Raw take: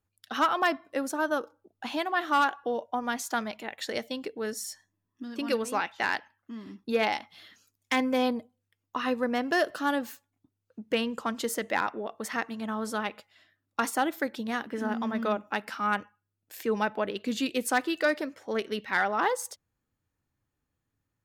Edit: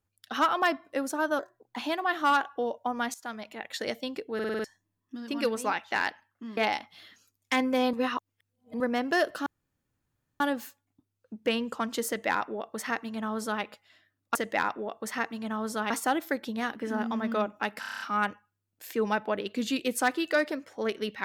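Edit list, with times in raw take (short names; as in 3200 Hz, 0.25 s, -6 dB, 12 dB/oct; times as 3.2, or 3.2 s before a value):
1.39–1.84 speed 121%
3.22–3.79 fade in, from -15 dB
4.42 stutter in place 0.05 s, 6 plays
6.65–6.97 cut
8.33–9.2 reverse
9.86 insert room tone 0.94 s
11.53–13.08 copy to 13.81
15.7 stutter 0.03 s, 8 plays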